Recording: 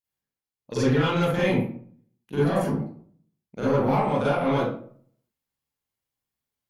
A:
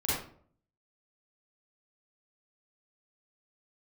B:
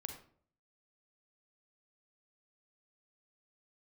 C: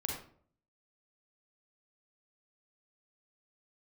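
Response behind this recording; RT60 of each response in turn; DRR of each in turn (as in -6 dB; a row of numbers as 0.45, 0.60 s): A; 0.55, 0.55, 0.55 s; -9.5, 4.5, -1.0 dB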